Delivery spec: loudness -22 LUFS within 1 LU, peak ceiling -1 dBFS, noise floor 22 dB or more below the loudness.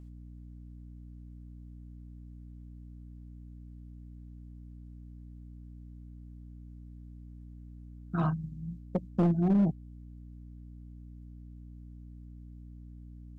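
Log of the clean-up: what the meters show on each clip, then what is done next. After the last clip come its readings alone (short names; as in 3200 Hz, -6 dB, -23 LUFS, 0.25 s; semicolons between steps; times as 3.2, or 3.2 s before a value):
clipped 0.4%; flat tops at -20.5 dBFS; hum 60 Hz; harmonics up to 300 Hz; hum level -45 dBFS; loudness -30.0 LUFS; peak -20.5 dBFS; loudness target -22.0 LUFS
-> clip repair -20.5 dBFS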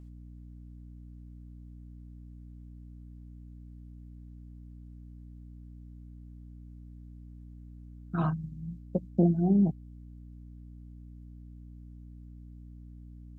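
clipped 0.0%; hum 60 Hz; harmonics up to 300 Hz; hum level -45 dBFS
-> de-hum 60 Hz, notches 5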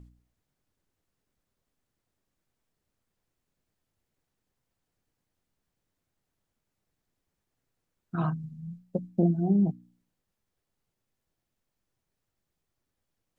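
hum none; loudness -28.5 LUFS; peak -13.0 dBFS; loudness target -22.0 LUFS
-> gain +6.5 dB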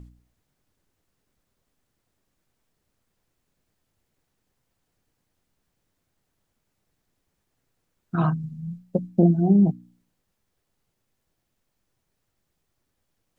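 loudness -22.0 LUFS; peak -6.5 dBFS; noise floor -77 dBFS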